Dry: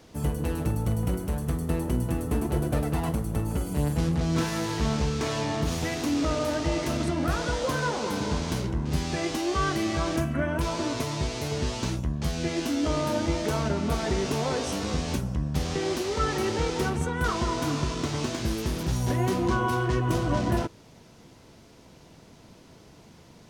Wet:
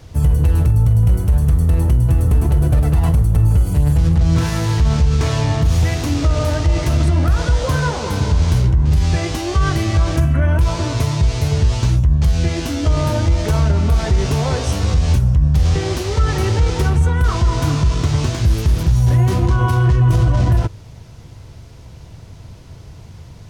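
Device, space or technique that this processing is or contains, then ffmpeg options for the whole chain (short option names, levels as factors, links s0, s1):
car stereo with a boomy subwoofer: -af "lowshelf=f=150:t=q:w=1.5:g=13,alimiter=limit=0.224:level=0:latency=1:release=51,volume=2.11"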